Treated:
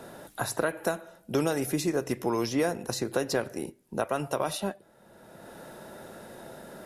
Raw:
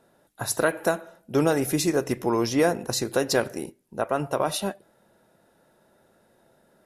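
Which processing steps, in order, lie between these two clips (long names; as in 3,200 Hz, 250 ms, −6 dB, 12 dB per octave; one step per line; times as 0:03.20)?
multiband upward and downward compressor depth 70%
level −4.5 dB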